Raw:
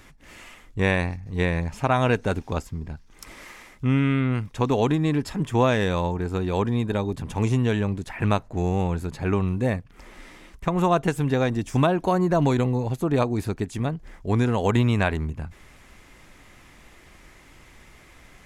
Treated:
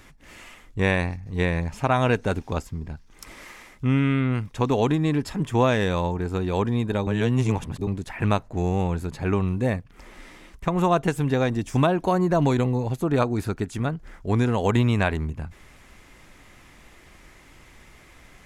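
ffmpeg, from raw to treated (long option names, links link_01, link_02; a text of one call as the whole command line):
ffmpeg -i in.wav -filter_complex "[0:a]asettb=1/sr,asplit=3[link_01][link_02][link_03];[link_01]atrim=end=13.104[link_04];[link_02]atrim=start=13.1:end=14.31,asetpts=PTS-STARTPTS,afade=type=in:duration=0.004:curve=qsin,afade=type=out:start_time=1.206:duration=0.004:curve=qsin,equalizer=frequency=1400:width=5.1:gain=7[link_05];[link_03]atrim=start=14.306[link_06];[link_04][link_05]acrossfade=duration=0.004:curve1=hsin:curve2=qsin[link_07];[link_07][link_06]acrossfade=duration=0.004:curve1=qsin:curve2=hsin,asplit=3[link_08][link_09][link_10];[link_08]atrim=end=7.072[link_11];[link_09]atrim=start=7.068:end=7.872,asetpts=PTS-STARTPTS,areverse[link_12];[link_10]atrim=start=7.868[link_13];[link_11][link_12]acrossfade=duration=0.004:curve1=hsin:curve2=hsin[link_14];[link_14][link_13]acrossfade=duration=0.004:curve1=hsin:curve2=hsin" out.wav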